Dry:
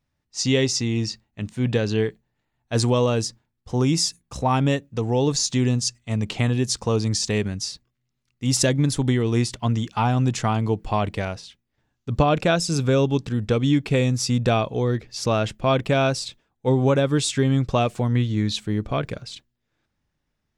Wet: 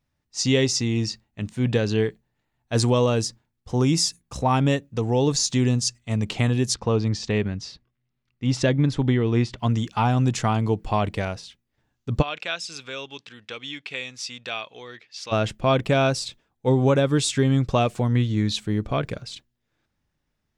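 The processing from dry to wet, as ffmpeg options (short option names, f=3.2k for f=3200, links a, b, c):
-filter_complex "[0:a]asettb=1/sr,asplit=3[a][b][c];[a]atrim=end=6.744[d];[b]atrim=start=6.74:end=9.58,asetpts=PTS-STARTPTS,afade=t=in:d=0.004:c=qsin,afade=t=out:st=2.836:d=0.004:c=qsin,lowpass=3.4k[e];[c]atrim=start=9.576[f];[d][e]acrossfade=d=0.004:c1=hsin:c2=qsin[g];[g][f]acrossfade=d=0.004:c1=qsin:c2=hsin,asplit=3[h][i][j];[h]afade=t=out:st=12.21:d=0.02[k];[i]bandpass=f=2.8k:t=q:w=1.2,afade=t=in:st=12.21:d=0.02,afade=t=out:st=15.31:d=0.02[l];[j]afade=t=in:st=15.31:d=0.02[m];[k][l][m]amix=inputs=3:normalize=0"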